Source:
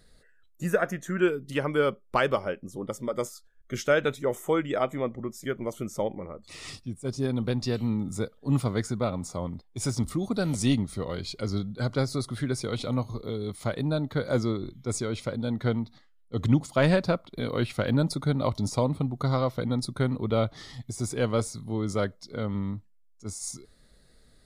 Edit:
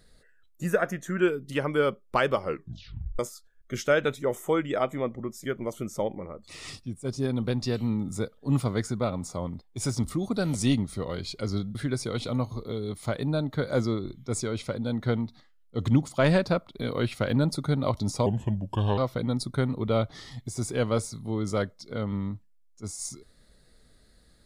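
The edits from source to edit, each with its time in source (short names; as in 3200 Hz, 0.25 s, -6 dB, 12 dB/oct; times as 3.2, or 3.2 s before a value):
2.41 tape stop 0.78 s
11.75–12.33 cut
18.84–19.4 speed 78%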